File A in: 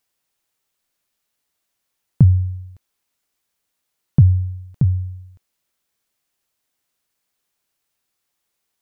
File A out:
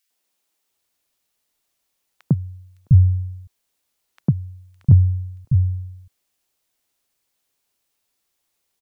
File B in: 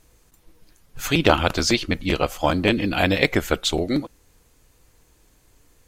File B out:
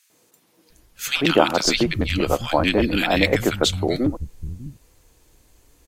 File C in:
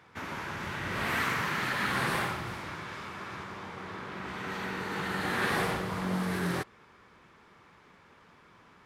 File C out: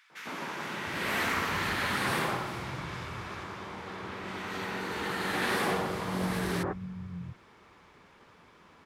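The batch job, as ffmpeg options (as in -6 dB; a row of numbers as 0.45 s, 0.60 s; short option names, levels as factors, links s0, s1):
-filter_complex "[0:a]acrossover=split=150|1500[s0][s1][s2];[s1]adelay=100[s3];[s0]adelay=700[s4];[s4][s3][s2]amix=inputs=3:normalize=0,volume=1.26"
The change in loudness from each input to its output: -1.5 LU, +1.0 LU, 0.0 LU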